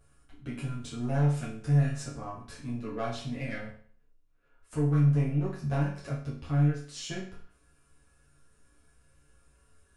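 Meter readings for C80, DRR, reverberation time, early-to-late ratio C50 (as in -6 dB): 9.5 dB, -8.5 dB, 0.50 s, 5.5 dB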